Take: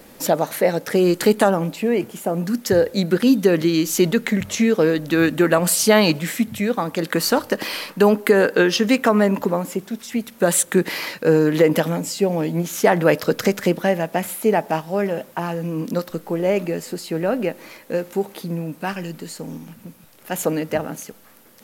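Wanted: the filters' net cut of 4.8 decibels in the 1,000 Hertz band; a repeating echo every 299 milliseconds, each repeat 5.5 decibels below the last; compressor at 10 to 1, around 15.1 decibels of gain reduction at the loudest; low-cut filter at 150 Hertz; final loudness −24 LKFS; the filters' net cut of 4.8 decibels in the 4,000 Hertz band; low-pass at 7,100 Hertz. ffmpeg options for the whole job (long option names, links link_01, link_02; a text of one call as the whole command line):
ffmpeg -i in.wav -af "highpass=150,lowpass=7100,equalizer=frequency=1000:width_type=o:gain=-6.5,equalizer=frequency=4000:width_type=o:gain=-5.5,acompressor=threshold=-27dB:ratio=10,aecho=1:1:299|598|897|1196|1495|1794|2093:0.531|0.281|0.149|0.079|0.0419|0.0222|0.0118,volume=7dB" out.wav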